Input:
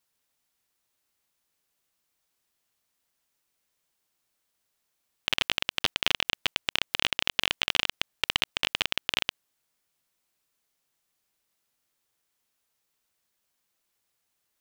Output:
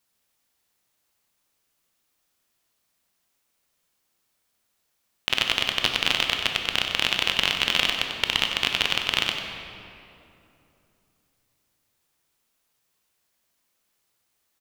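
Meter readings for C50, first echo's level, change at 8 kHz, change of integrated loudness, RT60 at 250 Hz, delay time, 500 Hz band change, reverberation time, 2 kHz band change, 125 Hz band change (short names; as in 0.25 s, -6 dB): 3.5 dB, -9.5 dB, +4.5 dB, +4.5 dB, 3.5 s, 94 ms, +5.0 dB, 2.9 s, +4.5 dB, +5.5 dB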